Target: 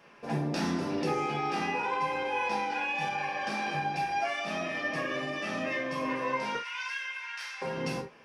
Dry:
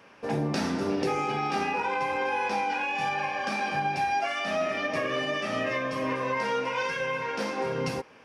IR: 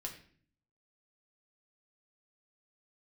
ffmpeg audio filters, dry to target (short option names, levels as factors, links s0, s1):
-filter_complex "[0:a]asettb=1/sr,asplit=3[s0][s1][s2];[s0]atrim=end=6.554[s3];[s1]atrim=start=6.55:end=7.62,asetpts=PTS-STARTPTS,afade=t=in:d=0.004:c=qsin,afade=t=out:st=1.066:d=0.004:c=qsin,highpass=f=1300:w=0.5412,highpass=f=1300:w=1.3066[s4];[s2]atrim=start=7.616[s5];[s3][s4]acrossfade=d=0.004:c1=hsin:c2=qsin[s6];[s6][s5]acrossfade=d=0.004:c1=qsin:c2=hsin[s7];[1:a]atrim=start_sample=2205,afade=t=out:st=0.13:d=0.01,atrim=end_sample=6174[s8];[s7][s8]afir=irnorm=-1:irlink=0"